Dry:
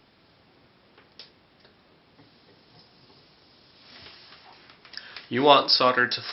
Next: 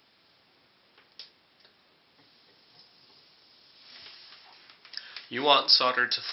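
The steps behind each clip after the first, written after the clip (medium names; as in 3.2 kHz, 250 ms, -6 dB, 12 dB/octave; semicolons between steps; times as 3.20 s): tilt EQ +2.5 dB/octave; trim -5 dB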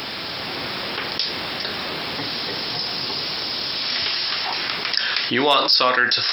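level rider gain up to 7.5 dB; hard clipper -4.5 dBFS, distortion -28 dB; level flattener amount 70%; trim -2.5 dB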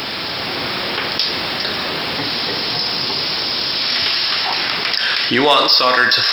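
in parallel at -11.5 dB: hard clipper -19.5 dBFS, distortion -7 dB; on the sum: thinning echo 67 ms, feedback 79%, high-pass 350 Hz, level -13 dB; loudness maximiser +4.5 dB; trim -1 dB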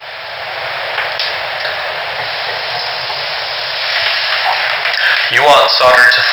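expander -17 dBFS; FFT filter 140 Hz 0 dB, 250 Hz -23 dB, 630 Hz +14 dB, 1.2 kHz +6 dB, 1.7 kHz +12 dB, 10 kHz -8 dB, 15 kHz -3 dB; short-mantissa float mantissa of 4-bit; trim -1 dB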